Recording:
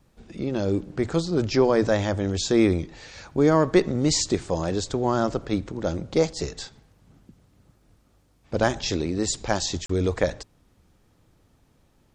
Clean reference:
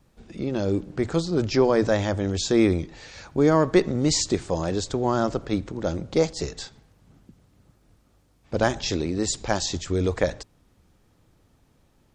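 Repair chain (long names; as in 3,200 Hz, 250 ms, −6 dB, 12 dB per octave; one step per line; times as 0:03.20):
repair the gap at 0:09.86, 34 ms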